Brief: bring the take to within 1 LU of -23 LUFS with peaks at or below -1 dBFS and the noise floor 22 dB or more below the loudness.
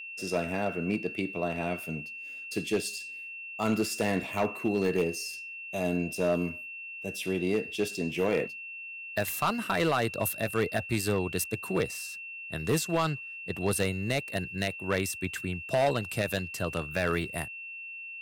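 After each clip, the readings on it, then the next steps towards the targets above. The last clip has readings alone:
clipped 0.9%; flat tops at -19.5 dBFS; steady tone 2700 Hz; tone level -39 dBFS; loudness -31.0 LUFS; peak -19.5 dBFS; loudness target -23.0 LUFS
-> clip repair -19.5 dBFS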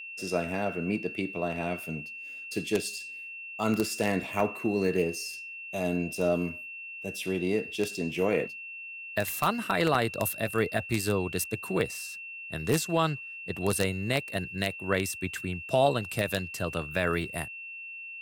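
clipped 0.0%; steady tone 2700 Hz; tone level -39 dBFS
-> notch 2700 Hz, Q 30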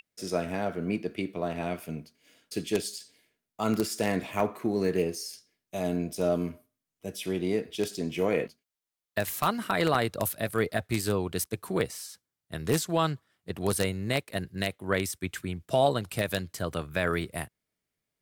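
steady tone none; loudness -30.5 LUFS; peak -10.5 dBFS; loudness target -23.0 LUFS
-> gain +7.5 dB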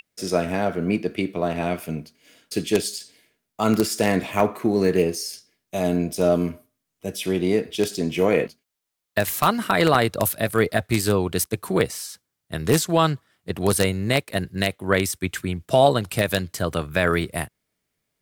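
loudness -23.0 LUFS; peak -3.0 dBFS; noise floor -80 dBFS

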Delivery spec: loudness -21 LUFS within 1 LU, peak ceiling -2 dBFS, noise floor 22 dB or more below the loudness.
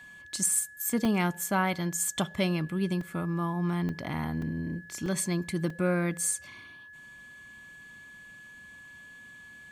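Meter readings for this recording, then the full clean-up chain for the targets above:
dropouts 6; longest dropout 2.9 ms; steady tone 1700 Hz; tone level -47 dBFS; loudness -29.5 LUFS; peak -13.0 dBFS; loudness target -21.0 LUFS
-> interpolate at 1.05/3.01/3.89/4.42/5.06/5.7, 2.9 ms; notch 1700 Hz, Q 30; gain +8.5 dB

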